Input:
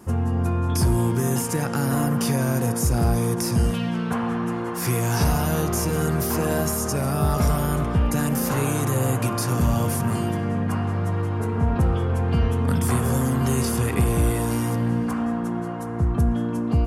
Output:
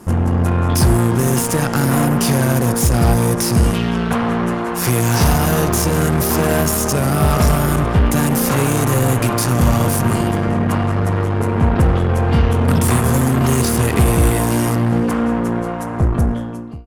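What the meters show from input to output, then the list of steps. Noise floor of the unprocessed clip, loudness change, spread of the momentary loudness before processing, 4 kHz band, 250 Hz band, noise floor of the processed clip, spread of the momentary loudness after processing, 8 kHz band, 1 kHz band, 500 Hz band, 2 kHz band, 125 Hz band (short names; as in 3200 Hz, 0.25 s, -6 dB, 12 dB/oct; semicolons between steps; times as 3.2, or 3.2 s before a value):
-27 dBFS, +7.0 dB, 4 LU, +8.5 dB, +6.5 dB, -23 dBFS, 4 LU, +7.5 dB, +8.0 dB, +7.5 dB, +8.5 dB, +6.5 dB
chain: ending faded out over 0.86 s; added harmonics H 8 -18 dB, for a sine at -10.5 dBFS; gain +6.5 dB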